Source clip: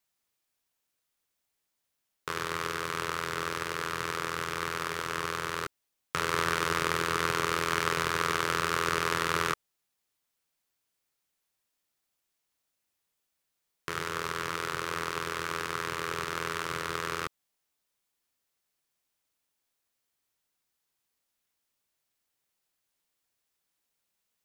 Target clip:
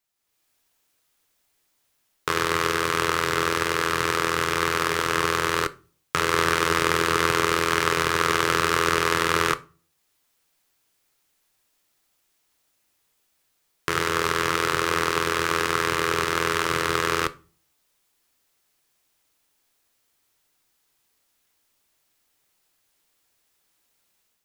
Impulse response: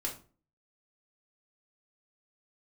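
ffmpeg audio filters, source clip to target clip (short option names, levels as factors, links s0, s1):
-filter_complex "[0:a]dynaudnorm=f=130:g=5:m=3.55,asplit=2[s0][s1];[1:a]atrim=start_sample=2205[s2];[s1][s2]afir=irnorm=-1:irlink=0,volume=0.266[s3];[s0][s3]amix=inputs=2:normalize=0,volume=0.841"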